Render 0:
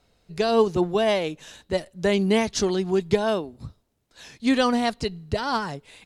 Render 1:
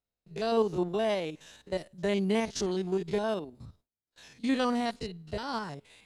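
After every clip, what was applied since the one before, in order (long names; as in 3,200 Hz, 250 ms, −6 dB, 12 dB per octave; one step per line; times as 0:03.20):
spectrum averaged block by block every 50 ms
noise gate with hold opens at −48 dBFS
level −6.5 dB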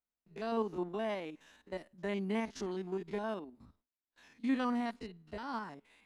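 octave-band graphic EQ 125/250/500/1,000/2,000/4,000/8,000 Hz −10/+8/−3/+5/+4/−4/−5 dB
level −9 dB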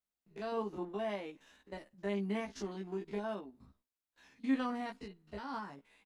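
double-tracking delay 15 ms −4.5 dB
level −3 dB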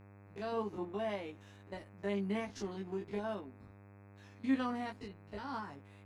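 hum with harmonics 100 Hz, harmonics 26, −57 dBFS −6 dB per octave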